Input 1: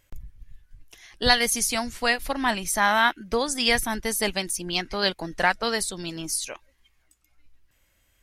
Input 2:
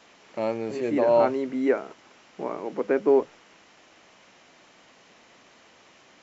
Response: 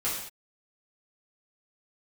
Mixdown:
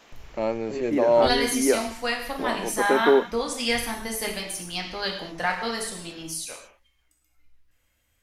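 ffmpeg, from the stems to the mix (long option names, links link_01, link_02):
-filter_complex "[0:a]volume=-10dB,asplit=2[link_01][link_02];[link_02]volume=-3.5dB[link_03];[1:a]volume=11dB,asoftclip=hard,volume=-11dB,volume=1dB[link_04];[2:a]atrim=start_sample=2205[link_05];[link_03][link_05]afir=irnorm=-1:irlink=0[link_06];[link_01][link_04][link_06]amix=inputs=3:normalize=0"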